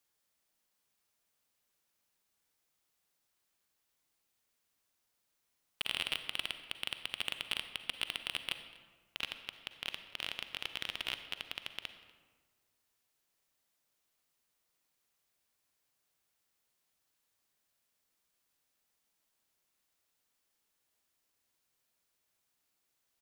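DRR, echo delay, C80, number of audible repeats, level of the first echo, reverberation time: 9.0 dB, 243 ms, 10.5 dB, 1, −22.5 dB, 1.6 s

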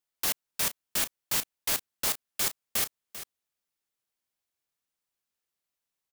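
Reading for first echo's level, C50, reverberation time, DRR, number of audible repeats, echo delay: −13.0 dB, no reverb audible, no reverb audible, no reverb audible, 1, 393 ms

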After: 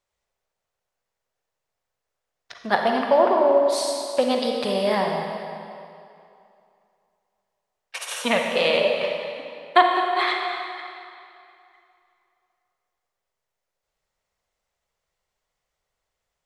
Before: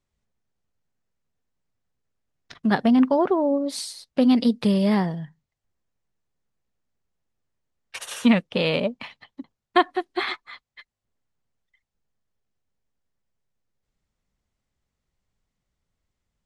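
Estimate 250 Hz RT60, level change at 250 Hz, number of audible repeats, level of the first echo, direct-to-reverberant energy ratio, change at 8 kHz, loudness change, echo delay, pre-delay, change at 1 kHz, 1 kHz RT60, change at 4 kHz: 2.3 s, −9.5 dB, no echo audible, no echo audible, 1.5 dB, +4.0 dB, +0.5 dB, no echo audible, 36 ms, +6.5 dB, 2.7 s, +4.5 dB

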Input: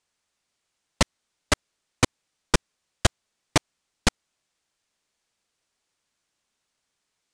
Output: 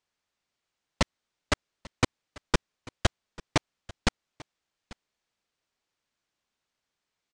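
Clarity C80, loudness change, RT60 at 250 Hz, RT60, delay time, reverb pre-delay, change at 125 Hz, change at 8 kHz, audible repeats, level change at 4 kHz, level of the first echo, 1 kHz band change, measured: no reverb audible, −4.5 dB, no reverb audible, no reverb audible, 842 ms, no reverb audible, −3.5 dB, −9.0 dB, 1, −5.5 dB, −21.0 dB, −4.0 dB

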